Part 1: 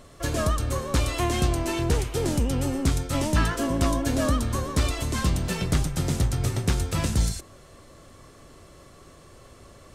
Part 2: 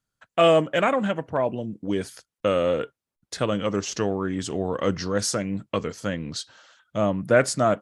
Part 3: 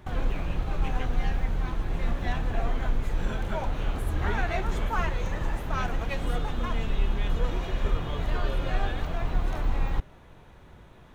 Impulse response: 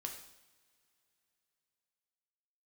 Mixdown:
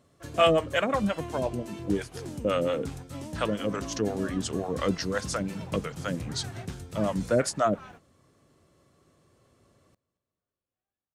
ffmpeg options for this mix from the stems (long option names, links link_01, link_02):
-filter_complex "[0:a]lowshelf=frequency=320:gain=7.5,volume=-16dB,asplit=2[link_01][link_02];[link_02]volume=-23dB[link_03];[1:a]acrossover=split=530[link_04][link_05];[link_04]aeval=exprs='val(0)*(1-1/2+1/2*cos(2*PI*5.7*n/s))':channel_layout=same[link_06];[link_05]aeval=exprs='val(0)*(1-1/2-1/2*cos(2*PI*5.7*n/s))':channel_layout=same[link_07];[link_06][link_07]amix=inputs=2:normalize=0,volume=1dB,asplit=2[link_08][link_09];[2:a]adelay=2050,volume=-16dB[link_10];[link_09]apad=whole_len=582086[link_11];[link_10][link_11]sidechaingate=range=-47dB:threshold=-55dB:ratio=16:detection=peak[link_12];[link_03]aecho=0:1:225|450|675|900|1125|1350|1575|1800|2025:1|0.58|0.336|0.195|0.113|0.0656|0.0381|0.0221|0.0128[link_13];[link_01][link_08][link_12][link_13]amix=inputs=4:normalize=0,highpass=110"